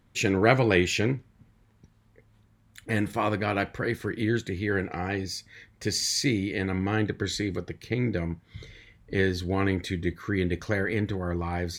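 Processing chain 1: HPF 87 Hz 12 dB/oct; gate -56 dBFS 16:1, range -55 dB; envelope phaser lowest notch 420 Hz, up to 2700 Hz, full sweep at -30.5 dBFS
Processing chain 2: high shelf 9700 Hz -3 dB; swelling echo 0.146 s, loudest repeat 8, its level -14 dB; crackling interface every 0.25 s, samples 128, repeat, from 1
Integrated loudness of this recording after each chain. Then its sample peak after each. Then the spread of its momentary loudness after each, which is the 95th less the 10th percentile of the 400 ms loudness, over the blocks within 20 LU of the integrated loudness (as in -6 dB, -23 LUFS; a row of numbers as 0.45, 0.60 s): -29.0, -26.5 LUFS; -7.5, -6.0 dBFS; 9, 6 LU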